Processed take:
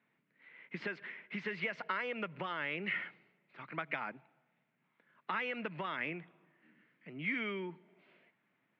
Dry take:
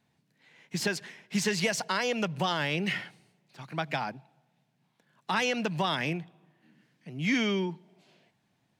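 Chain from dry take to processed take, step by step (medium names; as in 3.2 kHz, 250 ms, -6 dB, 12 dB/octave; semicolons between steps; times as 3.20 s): compression 5:1, threshold -32 dBFS, peak gain reduction 9 dB; cabinet simulation 240–2800 Hz, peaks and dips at 770 Hz -7 dB, 1.3 kHz +6 dB, 2.1 kHz +7 dB; trim -2.5 dB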